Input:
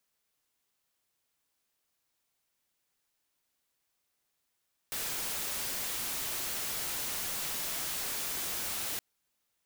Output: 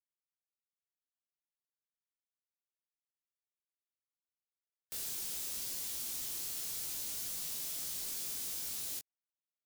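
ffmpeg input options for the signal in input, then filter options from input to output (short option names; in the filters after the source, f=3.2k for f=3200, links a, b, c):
-f lavfi -i "anoisesrc=c=white:a=0.0291:d=4.07:r=44100:seed=1"
-filter_complex "[0:a]afftfilt=real='re*gte(hypot(re,im),0.001)':imag='im*gte(hypot(re,im),0.001)':win_size=1024:overlap=0.75,acrossover=split=460|3600[a][b][c];[a]acompressor=threshold=-55dB:ratio=4[d];[b]acompressor=threshold=-58dB:ratio=4[e];[d][e][c]amix=inputs=3:normalize=0,flanger=delay=18:depth=5.2:speed=0.53"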